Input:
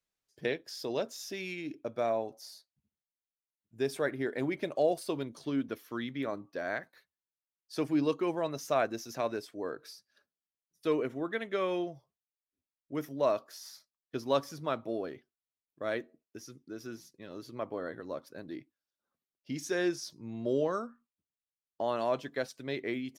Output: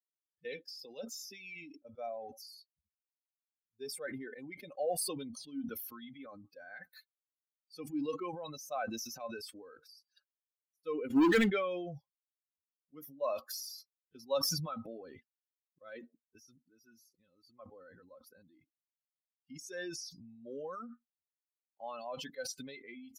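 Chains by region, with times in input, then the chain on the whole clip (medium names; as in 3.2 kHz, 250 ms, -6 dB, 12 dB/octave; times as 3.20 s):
11.10–11.50 s: peaking EQ 320 Hz +11.5 dB 0.4 oct + waveshaping leveller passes 5
whole clip: expander on every frequency bin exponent 2; comb 3.9 ms, depth 69%; decay stretcher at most 33 dB/s; trim -5 dB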